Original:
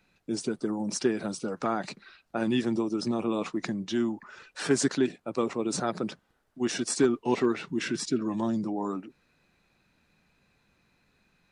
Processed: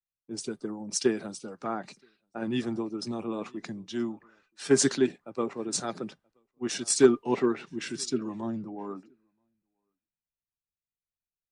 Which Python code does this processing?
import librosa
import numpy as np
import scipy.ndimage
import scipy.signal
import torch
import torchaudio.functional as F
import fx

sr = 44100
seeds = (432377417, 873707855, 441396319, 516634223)

y = fx.comb_fb(x, sr, f0_hz=400.0, decay_s=0.15, harmonics='all', damping=0.0, mix_pct=40)
y = y + 10.0 ** (-22.0 / 20.0) * np.pad(y, (int(979 * sr / 1000.0), 0))[:len(y)]
y = fx.band_widen(y, sr, depth_pct=100)